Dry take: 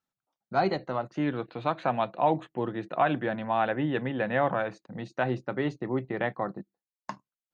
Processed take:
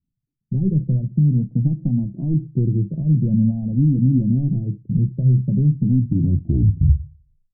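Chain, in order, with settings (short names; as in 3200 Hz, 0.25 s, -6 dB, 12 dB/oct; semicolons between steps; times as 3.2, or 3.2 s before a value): tape stop at the end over 1.61 s; in parallel at -4.5 dB: soft clip -21 dBFS, distortion -13 dB; on the sum: compressor 4:1, threshold -25 dBFS, peak gain reduction 8 dB; inverse Chebyshev low-pass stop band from 1200 Hz, stop band 80 dB; AGC gain up to 7.5 dB; on a send at -17 dB: reverb RT60 0.25 s, pre-delay 3 ms; on the sum: maximiser +22.5 dB; cascading flanger rising 0.46 Hz; gain -3 dB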